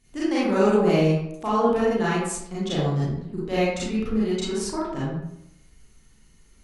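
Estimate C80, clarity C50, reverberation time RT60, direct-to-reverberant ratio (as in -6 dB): 3.0 dB, -2.0 dB, 0.80 s, -9.0 dB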